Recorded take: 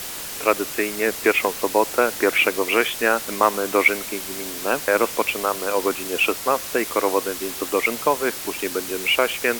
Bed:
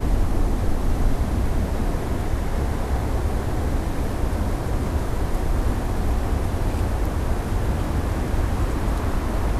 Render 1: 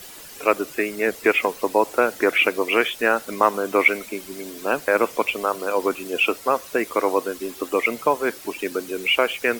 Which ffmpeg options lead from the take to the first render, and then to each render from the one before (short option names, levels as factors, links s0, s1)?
-af "afftdn=nr=11:nf=-32"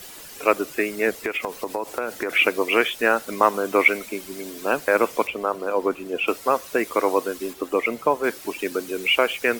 -filter_complex "[0:a]asplit=3[s0][s1][s2];[s0]afade=t=out:st=1.22:d=0.02[s3];[s1]acompressor=threshold=0.0794:ratio=6:attack=3.2:release=140:knee=1:detection=peak,afade=t=in:st=1.22:d=0.02,afade=t=out:st=2.29:d=0.02[s4];[s2]afade=t=in:st=2.29:d=0.02[s5];[s3][s4][s5]amix=inputs=3:normalize=0,asettb=1/sr,asplit=3[s6][s7][s8];[s6]atrim=end=5.274[s9];[s7]atrim=start=5.27:end=6.28,asetpts=PTS-STARTPTS,afade=t=in:d=0.004:c=qsin,afade=t=out:st=1.006:d=0.004:c=qsin,highshelf=f=2500:g=-11.5[s10];[s8]atrim=start=6.276[s11];[s9][s10]acrossfade=d=0.004:c1=hsin:c2=qsin[s12];[s12][s11]acrossfade=d=0.004:c1=qsin:c2=hsin,asettb=1/sr,asplit=3[s13][s14][s15];[s13]atrim=end=7.534[s16];[s14]atrim=start=7.53:end=8.24,asetpts=PTS-STARTPTS,afade=t=in:d=0.004:c=qsin,afade=t=out:st=0.706:d=0.004:c=qsin,highshelf=f=2100:g=-6.5[s17];[s15]atrim=start=8.236[s18];[s16][s17]acrossfade=d=0.004:c1=hsin:c2=qsin[s19];[s19][s18]acrossfade=d=0.004:c1=qsin:c2=hsin"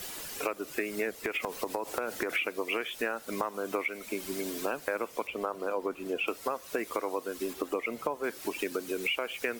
-af "alimiter=limit=0.398:level=0:latency=1:release=463,acompressor=threshold=0.0355:ratio=6"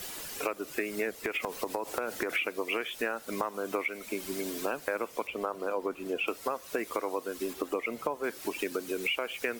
-af anull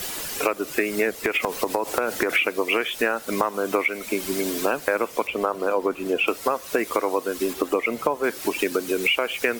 -af "volume=2.99"